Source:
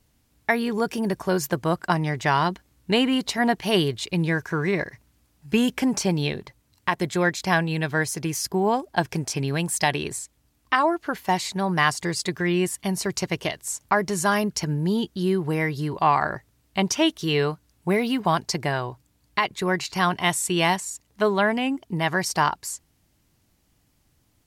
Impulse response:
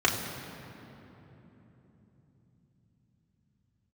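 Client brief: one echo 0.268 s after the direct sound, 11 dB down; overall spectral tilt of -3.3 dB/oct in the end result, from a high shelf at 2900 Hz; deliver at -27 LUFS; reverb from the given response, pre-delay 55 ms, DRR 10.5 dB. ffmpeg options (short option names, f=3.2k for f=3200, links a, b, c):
-filter_complex "[0:a]highshelf=f=2.9k:g=8,aecho=1:1:268:0.282,asplit=2[a][b];[1:a]atrim=start_sample=2205,adelay=55[c];[b][c]afir=irnorm=-1:irlink=0,volume=-24.5dB[d];[a][d]amix=inputs=2:normalize=0,volume=-5.5dB"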